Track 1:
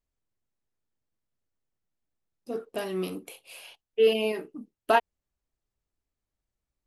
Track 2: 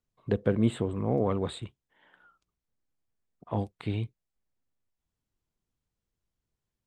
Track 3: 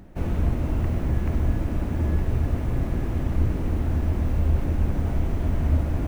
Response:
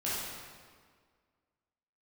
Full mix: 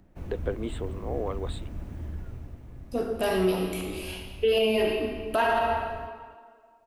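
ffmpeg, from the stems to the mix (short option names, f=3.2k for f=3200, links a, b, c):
-filter_complex "[0:a]bandreject=f=50:t=h:w=6,bandreject=f=100:t=h:w=6,bandreject=f=150:t=h:w=6,bandreject=f=200:t=h:w=6,bandreject=f=250:t=h:w=6,bandreject=f=300:t=h:w=6,bandreject=f=350:t=h:w=6,bandreject=f=400:t=h:w=6,bandreject=f=450:t=h:w=6,adelay=450,volume=3dB,asplit=2[a][b];[b]volume=-4.5dB[c];[1:a]highpass=f=290:w=0.5412,highpass=f=290:w=1.3066,volume=-3dB,asplit=2[d][e];[2:a]acrossover=split=180|3000[f][g][h];[g]acompressor=threshold=-33dB:ratio=6[i];[f][i][h]amix=inputs=3:normalize=0,volume=-11.5dB,afade=t=out:st=1.94:d=0.67:silence=0.398107,asplit=2[j][k];[k]volume=-14.5dB[l];[e]apad=whole_len=322693[m];[a][m]sidechaincompress=threshold=-48dB:ratio=8:attack=16:release=146[n];[3:a]atrim=start_sample=2205[o];[c][o]afir=irnorm=-1:irlink=0[p];[l]aecho=0:1:274:1[q];[n][d][j][p][q]amix=inputs=5:normalize=0,alimiter=limit=-15.5dB:level=0:latency=1:release=43"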